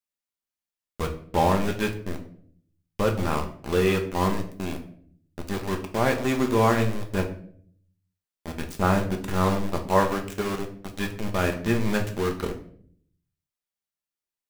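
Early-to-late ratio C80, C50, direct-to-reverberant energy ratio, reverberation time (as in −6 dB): 14.5 dB, 10.5 dB, 3.0 dB, 0.55 s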